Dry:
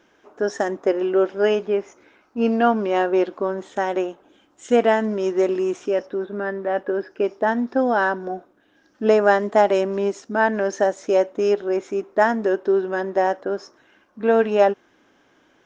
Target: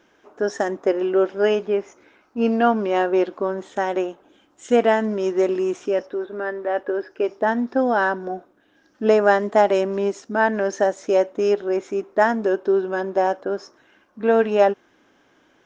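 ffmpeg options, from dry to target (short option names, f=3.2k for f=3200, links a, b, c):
-filter_complex "[0:a]asettb=1/sr,asplit=3[a][b][c];[a]atrim=end=6.034[d];[b]atrim=start=6.03:end=7.29,asetpts=PTS-STARTPTS,afade=t=in:d=0.004:c=qsin,afade=t=out:st=1.256:d=0.004:c=qsin,equalizer=f=180:w=3.2:g=-13.5[e];[c]atrim=start=7.286[f];[d][e]acrossfade=d=0.004:c1=hsin:c2=qsin[g];[g][f]acrossfade=d=0.004:c1=qsin:c2=hsin,asettb=1/sr,asplit=3[h][i][j];[h]atrim=end=12.334[k];[i]atrim=start=12.33:end=13.53,asetpts=PTS-STARTPTS,afade=t=in:d=0.004:c=qsin,afade=t=out:st=1.196:d=0.004:c=qsin,bandreject=f=1.9k:w=8.7[l];[j]atrim=start=13.526[m];[k][l]acrossfade=d=0.004:c1=hsin:c2=qsin[n];[n][m]acrossfade=d=0.004:c1=qsin:c2=hsin"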